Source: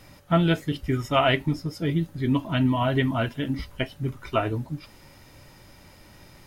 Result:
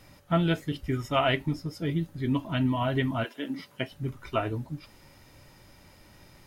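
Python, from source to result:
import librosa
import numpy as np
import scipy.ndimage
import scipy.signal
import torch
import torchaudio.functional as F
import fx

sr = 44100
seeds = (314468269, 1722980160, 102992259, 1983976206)

y = fx.highpass(x, sr, hz=fx.line((3.23, 370.0), (3.89, 97.0)), slope=24, at=(3.23, 3.89), fade=0.02)
y = y * librosa.db_to_amplitude(-4.0)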